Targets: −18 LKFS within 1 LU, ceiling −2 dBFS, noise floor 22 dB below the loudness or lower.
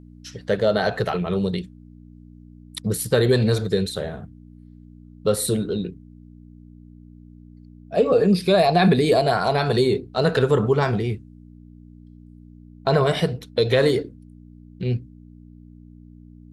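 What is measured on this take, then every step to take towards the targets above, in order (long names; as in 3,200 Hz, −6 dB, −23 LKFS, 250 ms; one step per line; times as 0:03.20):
mains hum 60 Hz; hum harmonics up to 300 Hz; level of the hum −45 dBFS; integrated loudness −21.0 LKFS; sample peak −6.0 dBFS; target loudness −18.0 LKFS
→ hum removal 60 Hz, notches 5
level +3 dB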